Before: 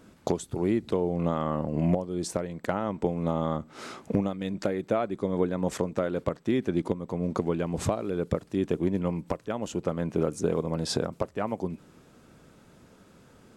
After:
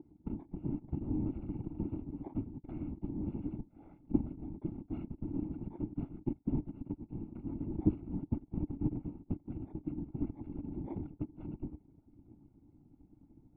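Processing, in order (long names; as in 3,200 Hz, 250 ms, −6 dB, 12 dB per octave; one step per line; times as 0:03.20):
samples in bit-reversed order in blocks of 256 samples
low shelf with overshoot 310 Hz +6.5 dB, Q 1.5
random phases in short frames
formant resonators in series u
level +11.5 dB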